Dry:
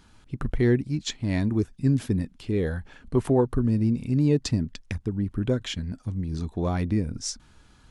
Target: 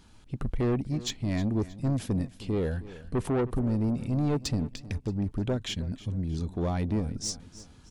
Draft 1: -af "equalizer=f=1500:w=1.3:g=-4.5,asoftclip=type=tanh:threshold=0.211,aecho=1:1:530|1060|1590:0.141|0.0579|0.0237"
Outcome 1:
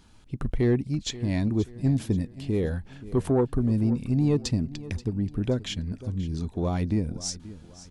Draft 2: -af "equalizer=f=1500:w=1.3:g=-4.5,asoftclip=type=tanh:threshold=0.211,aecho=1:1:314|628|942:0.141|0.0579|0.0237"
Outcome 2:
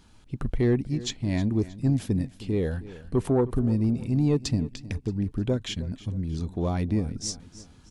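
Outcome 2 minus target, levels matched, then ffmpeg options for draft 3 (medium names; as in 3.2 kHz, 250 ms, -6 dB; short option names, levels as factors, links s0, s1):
saturation: distortion -11 dB
-af "equalizer=f=1500:w=1.3:g=-4.5,asoftclip=type=tanh:threshold=0.075,aecho=1:1:314|628|942:0.141|0.0579|0.0237"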